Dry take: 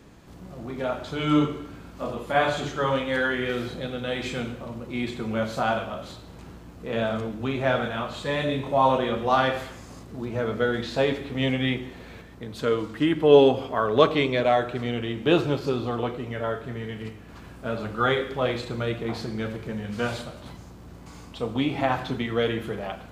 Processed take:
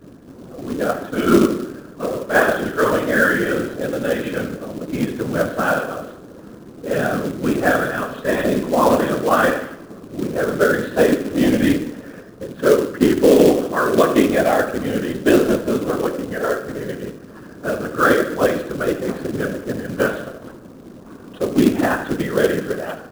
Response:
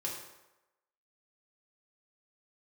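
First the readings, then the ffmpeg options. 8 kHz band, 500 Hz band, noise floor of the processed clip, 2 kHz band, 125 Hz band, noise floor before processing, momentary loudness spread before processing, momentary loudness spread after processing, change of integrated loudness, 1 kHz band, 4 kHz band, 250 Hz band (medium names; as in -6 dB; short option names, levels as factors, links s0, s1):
no reading, +6.5 dB, -40 dBFS, +8.5 dB, +2.5 dB, -45 dBFS, 18 LU, 14 LU, +7.0 dB, +4.0 dB, 0.0 dB, +8.5 dB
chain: -filter_complex "[0:a]adynamicequalizer=threshold=0.0158:dfrequency=470:dqfactor=2.1:tfrequency=470:tqfactor=2.1:attack=5:release=100:ratio=0.375:range=1.5:mode=cutabove:tftype=bell,aeval=exprs='val(0)+0.00794*(sin(2*PI*50*n/s)+sin(2*PI*2*50*n/s)/2+sin(2*PI*3*50*n/s)/3+sin(2*PI*4*50*n/s)/4+sin(2*PI*5*50*n/s)/5)':c=same,highpass=f=170:w=0.5412,highpass=f=170:w=1.3066,equalizer=f=180:t=q:w=4:g=-4,equalizer=f=280:t=q:w=4:g=6,equalizer=f=490:t=q:w=4:g=5,equalizer=f=840:t=q:w=4:g=-10,equalizer=f=1600:t=q:w=4:g=7,equalizer=f=2200:t=q:w=4:g=-9,lowpass=f=2700:w=0.5412,lowpass=f=2700:w=1.3066,acrossover=split=330|1400[s0][s1][s2];[s2]aeval=exprs='sgn(val(0))*max(abs(val(0))-0.00141,0)':c=same[s3];[s0][s1][s3]amix=inputs=3:normalize=0,afftfilt=real='hypot(re,im)*cos(2*PI*random(0))':imag='hypot(re,im)*sin(2*PI*random(1))':win_size=512:overlap=0.75,asplit=2[s4][s5];[s5]aecho=0:1:75|150|225|300|375:0.2|0.0978|0.0479|0.0235|0.0115[s6];[s4][s6]amix=inputs=2:normalize=0,acrusher=bits=4:mode=log:mix=0:aa=0.000001,alimiter=level_in=4.73:limit=0.891:release=50:level=0:latency=1,volume=0.891"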